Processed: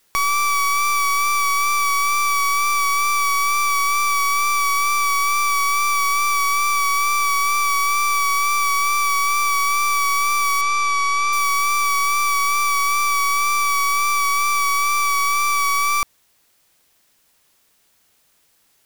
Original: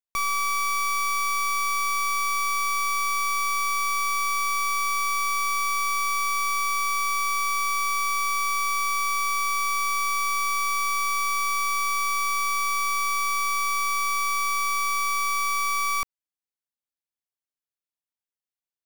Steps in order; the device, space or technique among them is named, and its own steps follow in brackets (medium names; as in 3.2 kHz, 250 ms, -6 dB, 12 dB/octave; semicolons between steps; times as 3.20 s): noise-reduction cassette on a plain deck (tape noise reduction on one side only encoder only; wow and flutter 25 cents; white noise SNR 42 dB); 10.61–11.33 s: low-pass 6.7 kHz 12 dB/octave; trim +6.5 dB